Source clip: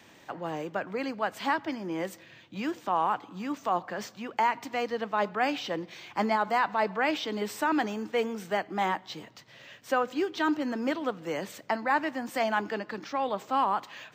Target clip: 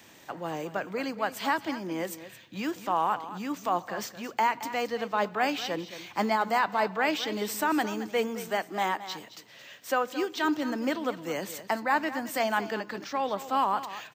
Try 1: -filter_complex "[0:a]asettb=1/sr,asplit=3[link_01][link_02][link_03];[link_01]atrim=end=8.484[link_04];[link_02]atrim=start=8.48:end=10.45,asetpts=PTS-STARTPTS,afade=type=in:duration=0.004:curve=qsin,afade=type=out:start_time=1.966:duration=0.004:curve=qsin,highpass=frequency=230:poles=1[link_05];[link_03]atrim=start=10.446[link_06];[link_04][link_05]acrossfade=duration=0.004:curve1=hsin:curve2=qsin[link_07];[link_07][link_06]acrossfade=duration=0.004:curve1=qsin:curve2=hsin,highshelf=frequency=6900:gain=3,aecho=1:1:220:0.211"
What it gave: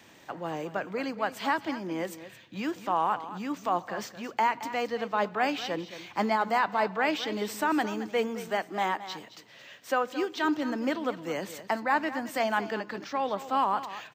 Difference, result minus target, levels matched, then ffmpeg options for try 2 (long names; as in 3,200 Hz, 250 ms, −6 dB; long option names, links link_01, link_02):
8,000 Hz band −4.0 dB
-filter_complex "[0:a]asettb=1/sr,asplit=3[link_01][link_02][link_03];[link_01]atrim=end=8.484[link_04];[link_02]atrim=start=8.48:end=10.45,asetpts=PTS-STARTPTS,afade=type=in:duration=0.004:curve=qsin,afade=type=out:start_time=1.966:duration=0.004:curve=qsin,highpass=frequency=230:poles=1[link_05];[link_03]atrim=start=10.446[link_06];[link_04][link_05]acrossfade=duration=0.004:curve1=hsin:curve2=qsin[link_07];[link_07][link_06]acrossfade=duration=0.004:curve1=qsin:curve2=hsin,highshelf=frequency=6900:gain=11.5,aecho=1:1:220:0.211"